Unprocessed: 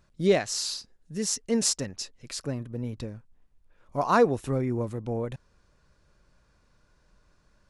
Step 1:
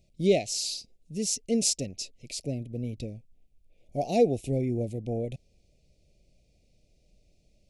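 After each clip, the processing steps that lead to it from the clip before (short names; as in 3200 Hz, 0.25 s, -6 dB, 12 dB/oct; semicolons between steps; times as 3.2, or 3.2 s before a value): elliptic band-stop 700–2300 Hz, stop band 40 dB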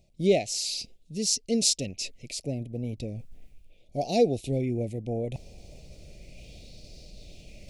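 reverse; upward compressor, threshold -30 dBFS; reverse; LFO bell 0.36 Hz 880–4600 Hz +9 dB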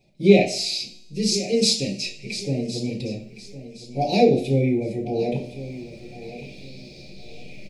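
resonator 120 Hz, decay 1.1 s, harmonics all, mix 50%; feedback echo 1.064 s, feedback 29%, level -14.5 dB; reverb RT60 0.50 s, pre-delay 3 ms, DRR -9.5 dB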